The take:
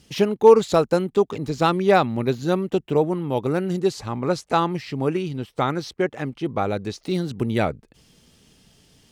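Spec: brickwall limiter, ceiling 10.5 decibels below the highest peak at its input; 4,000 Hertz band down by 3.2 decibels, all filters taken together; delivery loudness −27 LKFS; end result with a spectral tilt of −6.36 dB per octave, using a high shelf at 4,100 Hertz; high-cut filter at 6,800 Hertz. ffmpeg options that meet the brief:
ffmpeg -i in.wav -af "lowpass=6800,equalizer=frequency=4000:width_type=o:gain=-7,highshelf=frequency=4100:gain=6.5,volume=-1dB,alimiter=limit=-15dB:level=0:latency=1" out.wav

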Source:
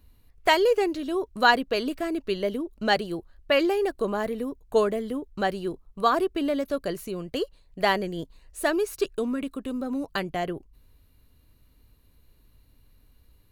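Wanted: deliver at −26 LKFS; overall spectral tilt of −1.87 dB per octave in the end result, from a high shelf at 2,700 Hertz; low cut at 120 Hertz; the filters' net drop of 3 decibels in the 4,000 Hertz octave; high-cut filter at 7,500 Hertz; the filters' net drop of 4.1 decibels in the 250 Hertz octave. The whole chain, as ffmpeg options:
ffmpeg -i in.wav -af "highpass=120,lowpass=7500,equalizer=frequency=250:width_type=o:gain=-5.5,highshelf=frequency=2700:gain=4,equalizer=frequency=4000:width_type=o:gain=-7.5,volume=2dB" out.wav

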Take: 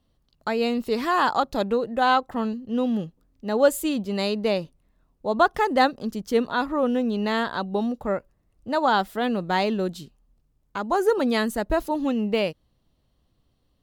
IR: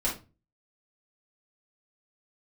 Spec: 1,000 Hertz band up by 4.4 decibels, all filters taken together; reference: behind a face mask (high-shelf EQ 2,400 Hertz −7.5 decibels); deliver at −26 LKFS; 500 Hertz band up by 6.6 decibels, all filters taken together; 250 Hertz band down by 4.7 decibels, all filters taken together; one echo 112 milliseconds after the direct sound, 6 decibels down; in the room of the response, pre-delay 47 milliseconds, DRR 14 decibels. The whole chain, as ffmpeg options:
-filter_complex "[0:a]equalizer=frequency=250:width_type=o:gain=-8,equalizer=frequency=500:width_type=o:gain=9,equalizer=frequency=1000:width_type=o:gain=4,aecho=1:1:112:0.501,asplit=2[link_01][link_02];[1:a]atrim=start_sample=2205,adelay=47[link_03];[link_02][link_03]afir=irnorm=-1:irlink=0,volume=-21.5dB[link_04];[link_01][link_04]amix=inputs=2:normalize=0,highshelf=frequency=2400:gain=-7.5,volume=-7dB"

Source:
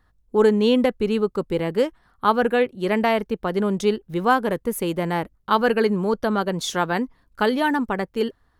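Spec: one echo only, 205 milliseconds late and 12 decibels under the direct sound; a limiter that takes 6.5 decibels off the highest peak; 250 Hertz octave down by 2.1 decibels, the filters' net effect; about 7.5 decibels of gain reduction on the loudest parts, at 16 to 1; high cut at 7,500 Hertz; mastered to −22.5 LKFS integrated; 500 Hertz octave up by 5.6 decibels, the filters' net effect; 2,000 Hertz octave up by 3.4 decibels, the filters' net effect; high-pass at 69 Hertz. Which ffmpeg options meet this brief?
ffmpeg -i in.wav -af "highpass=69,lowpass=7500,equalizer=frequency=250:width_type=o:gain=-4.5,equalizer=frequency=500:width_type=o:gain=7.5,equalizer=frequency=2000:width_type=o:gain=4,acompressor=threshold=-15dB:ratio=16,alimiter=limit=-12.5dB:level=0:latency=1,aecho=1:1:205:0.251,volume=0.5dB" out.wav

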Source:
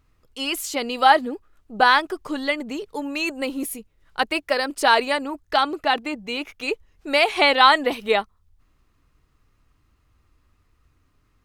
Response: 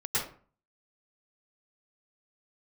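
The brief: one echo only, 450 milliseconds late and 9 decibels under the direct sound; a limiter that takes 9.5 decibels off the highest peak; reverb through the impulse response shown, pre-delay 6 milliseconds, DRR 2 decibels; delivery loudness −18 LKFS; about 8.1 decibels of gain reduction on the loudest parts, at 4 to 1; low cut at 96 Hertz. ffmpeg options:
-filter_complex "[0:a]highpass=96,acompressor=threshold=-19dB:ratio=4,alimiter=limit=-17dB:level=0:latency=1,aecho=1:1:450:0.355,asplit=2[link_01][link_02];[1:a]atrim=start_sample=2205,adelay=6[link_03];[link_02][link_03]afir=irnorm=-1:irlink=0,volume=-10dB[link_04];[link_01][link_04]amix=inputs=2:normalize=0,volume=8.5dB"

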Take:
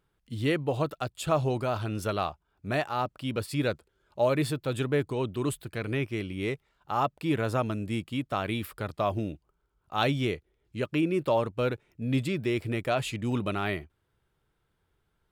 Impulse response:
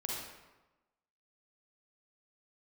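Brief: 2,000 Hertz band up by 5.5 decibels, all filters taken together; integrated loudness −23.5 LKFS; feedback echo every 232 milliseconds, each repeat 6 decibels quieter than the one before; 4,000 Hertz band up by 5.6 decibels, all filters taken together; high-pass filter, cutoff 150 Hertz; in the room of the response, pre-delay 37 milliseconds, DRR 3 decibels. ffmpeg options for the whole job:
-filter_complex "[0:a]highpass=150,equalizer=frequency=2000:width_type=o:gain=5.5,equalizer=frequency=4000:width_type=o:gain=5,aecho=1:1:232|464|696|928|1160|1392:0.501|0.251|0.125|0.0626|0.0313|0.0157,asplit=2[link_01][link_02];[1:a]atrim=start_sample=2205,adelay=37[link_03];[link_02][link_03]afir=irnorm=-1:irlink=0,volume=-5.5dB[link_04];[link_01][link_04]amix=inputs=2:normalize=0,volume=3dB"

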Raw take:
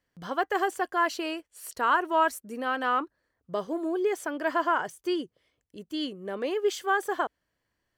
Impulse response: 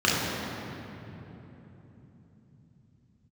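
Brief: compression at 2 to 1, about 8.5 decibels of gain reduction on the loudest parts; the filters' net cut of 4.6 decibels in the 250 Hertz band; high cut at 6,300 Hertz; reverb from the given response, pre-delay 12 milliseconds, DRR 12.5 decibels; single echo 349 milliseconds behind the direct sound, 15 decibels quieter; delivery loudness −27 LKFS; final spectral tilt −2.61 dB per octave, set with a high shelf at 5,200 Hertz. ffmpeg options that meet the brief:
-filter_complex "[0:a]lowpass=6300,equalizer=frequency=250:width_type=o:gain=-7.5,highshelf=frequency=5200:gain=8,acompressor=threshold=-34dB:ratio=2,aecho=1:1:349:0.178,asplit=2[link_01][link_02];[1:a]atrim=start_sample=2205,adelay=12[link_03];[link_02][link_03]afir=irnorm=-1:irlink=0,volume=-30.5dB[link_04];[link_01][link_04]amix=inputs=2:normalize=0,volume=8dB"

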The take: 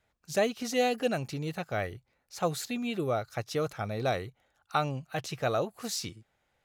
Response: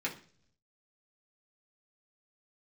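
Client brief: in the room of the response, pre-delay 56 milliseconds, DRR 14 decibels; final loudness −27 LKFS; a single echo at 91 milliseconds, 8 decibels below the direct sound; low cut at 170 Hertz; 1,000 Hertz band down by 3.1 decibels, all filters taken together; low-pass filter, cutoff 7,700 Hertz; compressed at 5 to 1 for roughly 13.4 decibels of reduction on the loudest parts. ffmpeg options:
-filter_complex "[0:a]highpass=170,lowpass=7700,equalizer=frequency=1000:width_type=o:gain=-5,acompressor=threshold=-39dB:ratio=5,aecho=1:1:91:0.398,asplit=2[link_01][link_02];[1:a]atrim=start_sample=2205,adelay=56[link_03];[link_02][link_03]afir=irnorm=-1:irlink=0,volume=-18.5dB[link_04];[link_01][link_04]amix=inputs=2:normalize=0,volume=15.5dB"

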